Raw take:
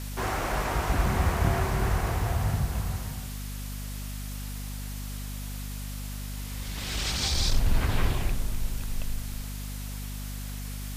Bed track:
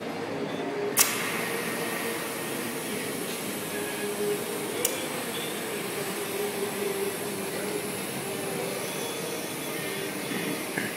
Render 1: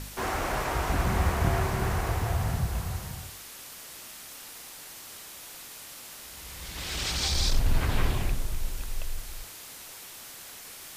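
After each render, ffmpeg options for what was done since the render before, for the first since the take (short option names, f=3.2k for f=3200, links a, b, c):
-af "bandreject=f=50:t=h:w=4,bandreject=f=100:t=h:w=4,bandreject=f=150:t=h:w=4,bandreject=f=200:t=h:w=4,bandreject=f=250:t=h:w=4"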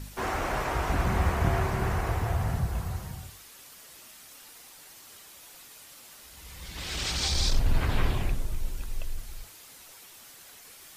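-af "afftdn=nr=7:nf=-45"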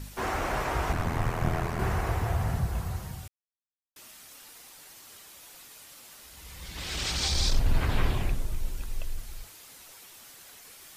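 -filter_complex "[0:a]asettb=1/sr,asplit=3[a][b][c];[a]atrim=end=0.924[d];[b]atrim=start=0.92:end=1.79,asetpts=PTS-STARTPTS,afade=t=in:d=0.004:c=qsin,afade=t=out:st=0.866:d=0.004:c=qsin,aeval=exprs='val(0)*sin(2*PI*41*n/s)':c=same[e];[c]atrim=start=1.786[f];[d][e]acrossfade=d=0.004:c1=hsin:c2=qsin[g];[g][f]acrossfade=d=0.004:c1=qsin:c2=hsin,asplit=3[h][i][j];[h]atrim=end=3.28,asetpts=PTS-STARTPTS,afade=t=out:st=3.276:d=0.004:c=hsin[k];[i]atrim=start=3.28:end=3.96,asetpts=PTS-STARTPTS,volume=0[l];[j]atrim=start=3.96,asetpts=PTS-STARTPTS,afade=t=in:d=0.004:c=hsin[m];[k][l][m]concat=n=3:v=0:a=1"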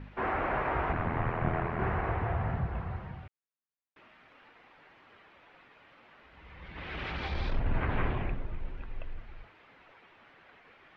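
-af "lowpass=f=2.4k:w=0.5412,lowpass=f=2.4k:w=1.3066,lowshelf=f=110:g=-7"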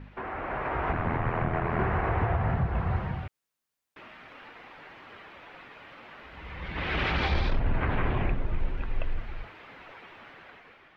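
-af "alimiter=level_in=3dB:limit=-24dB:level=0:latency=1:release=342,volume=-3dB,dynaudnorm=f=290:g=5:m=10dB"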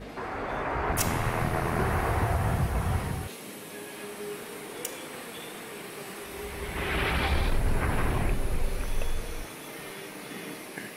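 -filter_complex "[1:a]volume=-9dB[a];[0:a][a]amix=inputs=2:normalize=0"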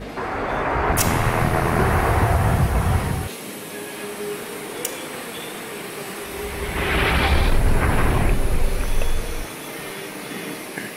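-af "volume=8.5dB,alimiter=limit=-3dB:level=0:latency=1"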